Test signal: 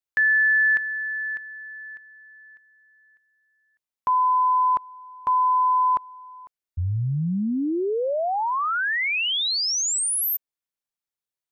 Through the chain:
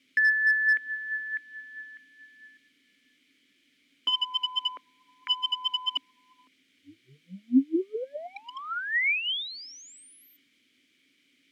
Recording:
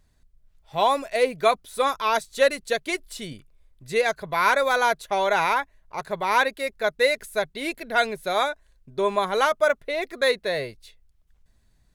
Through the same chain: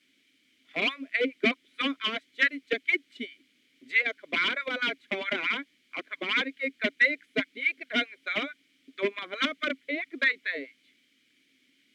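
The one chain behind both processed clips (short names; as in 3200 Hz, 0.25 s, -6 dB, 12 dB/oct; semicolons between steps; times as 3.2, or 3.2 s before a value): gate with hold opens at -54 dBFS, range -10 dB; bell 980 Hz +14.5 dB 2.4 oct; transient shaper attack +7 dB, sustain -7 dB; LFO high-pass sine 4.6 Hz 270–1700 Hz; requantised 8-bit, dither triangular; vowel filter i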